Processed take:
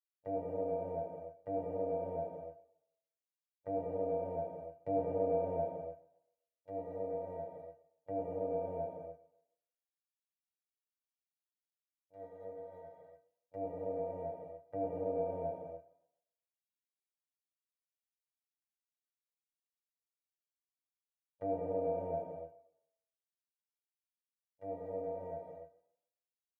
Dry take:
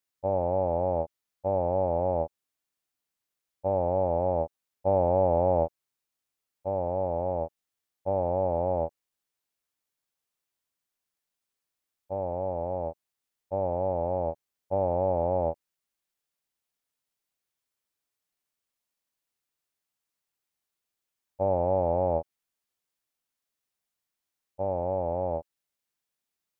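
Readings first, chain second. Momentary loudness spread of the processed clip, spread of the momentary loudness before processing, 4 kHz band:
16 LU, 10 LU, can't be measured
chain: noise gate −28 dBFS, range −24 dB
high-pass filter 77 Hz
parametric band 970 Hz −12.5 dB 0.92 octaves
stiff-string resonator 140 Hz, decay 0.5 s, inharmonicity 0.03
tape delay 137 ms, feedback 32%, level −20 dB
reverb whose tail is shaped and stops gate 320 ms flat, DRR 0 dB
one half of a high-frequency compander encoder only
level +6.5 dB

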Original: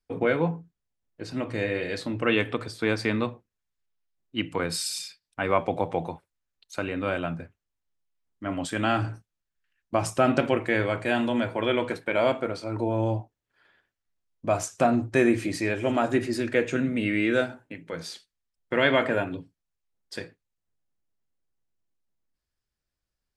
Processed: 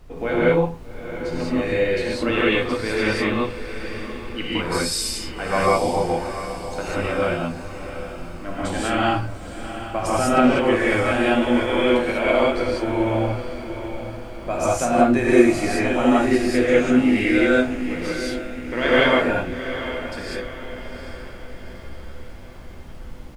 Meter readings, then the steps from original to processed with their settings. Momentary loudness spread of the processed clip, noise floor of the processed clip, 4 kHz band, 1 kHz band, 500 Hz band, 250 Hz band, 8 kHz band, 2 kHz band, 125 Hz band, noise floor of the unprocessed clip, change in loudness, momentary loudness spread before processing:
17 LU, −36 dBFS, +6.5 dB, +7.0 dB, +6.5 dB, +7.5 dB, +6.5 dB, +6.5 dB, +3.5 dB, below −85 dBFS, +6.0 dB, 15 LU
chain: low-shelf EQ 150 Hz −4 dB
double-tracking delay 12 ms −13 dB
background noise brown −42 dBFS
on a send: feedback delay with all-pass diffusion 791 ms, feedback 49%, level −11 dB
on the sum: reverb whose tail is shaped and stops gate 220 ms rising, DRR −8 dB
level −2.5 dB

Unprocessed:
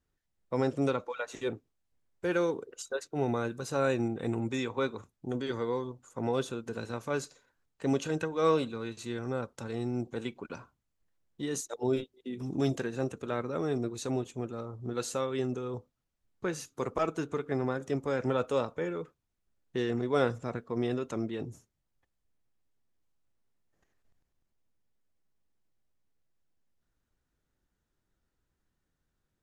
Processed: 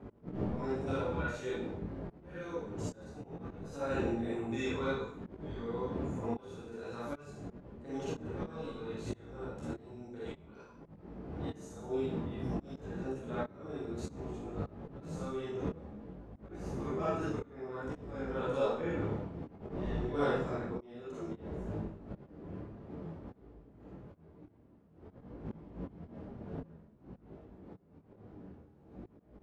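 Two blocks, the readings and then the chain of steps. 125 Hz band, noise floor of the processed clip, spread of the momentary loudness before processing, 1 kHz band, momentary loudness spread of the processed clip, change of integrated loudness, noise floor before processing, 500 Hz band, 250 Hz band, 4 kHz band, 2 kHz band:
−3.0 dB, −61 dBFS, 10 LU, −5.0 dB, 19 LU, −6.0 dB, −82 dBFS, −5.5 dB, −4.5 dB, −8.5 dB, −5.5 dB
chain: wind on the microphone 260 Hz −29 dBFS
high-pass filter 46 Hz 24 dB per octave
high-shelf EQ 4,600 Hz −5.5 dB
harmonic generator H 2 −7 dB, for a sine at −4.5 dBFS
four-comb reverb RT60 0.59 s, DRR −7 dB
volume swells 790 ms
parametric band 150 Hz −4.5 dB 0.26 octaves
micro pitch shift up and down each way 19 cents
level −5.5 dB

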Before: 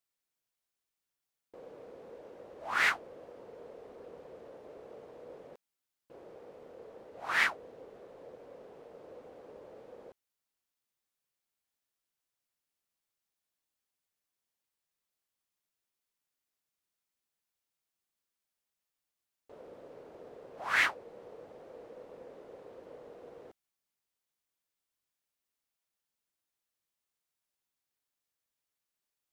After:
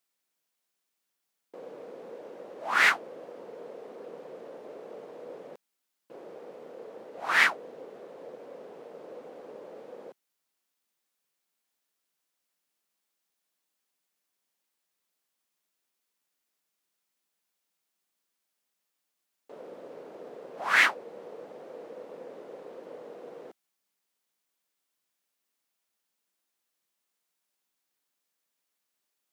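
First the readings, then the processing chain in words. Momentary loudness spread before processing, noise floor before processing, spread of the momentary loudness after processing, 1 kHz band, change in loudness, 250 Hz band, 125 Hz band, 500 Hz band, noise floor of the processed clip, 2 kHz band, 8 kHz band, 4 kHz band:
22 LU, below −85 dBFS, 22 LU, +6.0 dB, +6.0 dB, +6.0 dB, can't be measured, +6.0 dB, −83 dBFS, +6.0 dB, +6.0 dB, +6.0 dB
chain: high-pass filter 160 Hz 24 dB per octave
level +6 dB

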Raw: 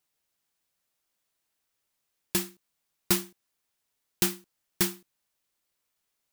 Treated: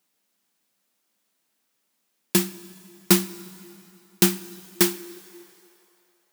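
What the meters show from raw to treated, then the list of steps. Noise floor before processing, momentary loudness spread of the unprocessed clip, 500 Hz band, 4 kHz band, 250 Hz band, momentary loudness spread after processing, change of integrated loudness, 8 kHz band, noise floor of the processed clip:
−81 dBFS, 15 LU, +9.5 dB, +6.0 dB, +10.5 dB, 20 LU, +6.5 dB, +6.0 dB, −74 dBFS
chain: dense smooth reverb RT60 3 s, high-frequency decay 0.85×, DRR 16 dB
high-pass filter sweep 210 Hz → 530 Hz, 0:04.46–0:06.13
level +6 dB

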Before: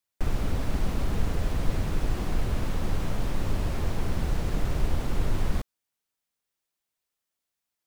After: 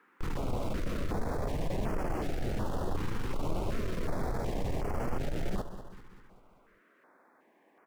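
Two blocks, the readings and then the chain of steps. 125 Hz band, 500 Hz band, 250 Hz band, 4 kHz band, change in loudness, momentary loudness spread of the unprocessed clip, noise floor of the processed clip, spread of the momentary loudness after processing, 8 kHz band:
−6.5 dB, +1.0 dB, −2.5 dB, −6.5 dB, −5.0 dB, 2 LU, −66 dBFS, 4 LU, −6.5 dB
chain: parametric band 670 Hz +10.5 dB 2.8 octaves
soft clipping −26 dBFS, distortion −9 dB
flanger 0.53 Hz, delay 4.4 ms, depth 6.6 ms, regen +64%
noise in a band 220–1,800 Hz −65 dBFS
on a send: repeating echo 195 ms, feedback 55%, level −12 dB
on the sum: notch on a step sequencer 2.7 Hz 640–3,700 Hz
level +2 dB

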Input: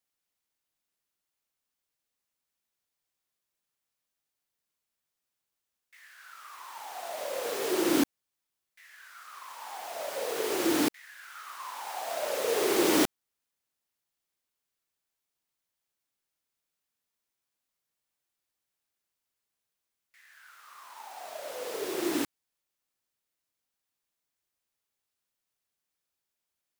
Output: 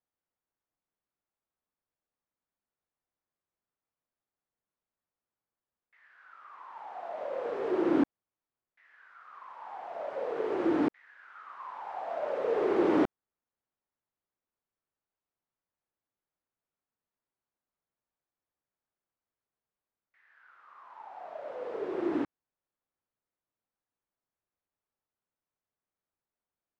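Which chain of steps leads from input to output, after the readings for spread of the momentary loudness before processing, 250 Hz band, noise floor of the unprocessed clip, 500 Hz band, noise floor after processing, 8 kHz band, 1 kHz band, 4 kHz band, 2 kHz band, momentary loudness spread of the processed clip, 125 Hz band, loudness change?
21 LU, 0.0 dB, below −85 dBFS, 0.0 dB, below −85 dBFS, below −30 dB, −1.0 dB, −18.0 dB, −7.0 dB, 21 LU, 0.0 dB, −1.5 dB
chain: low-pass filter 1,300 Hz 12 dB per octave

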